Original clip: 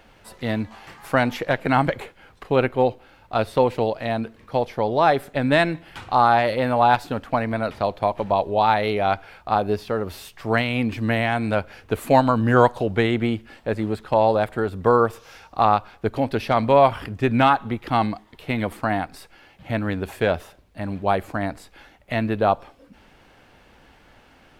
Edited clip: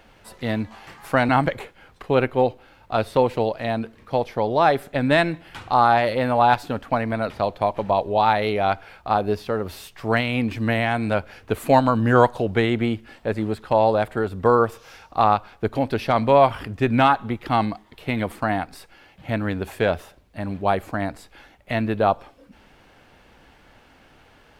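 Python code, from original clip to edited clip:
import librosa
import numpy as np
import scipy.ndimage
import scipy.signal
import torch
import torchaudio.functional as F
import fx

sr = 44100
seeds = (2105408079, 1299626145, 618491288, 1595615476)

y = fx.edit(x, sr, fx.cut(start_s=1.29, length_s=0.41), tone=tone)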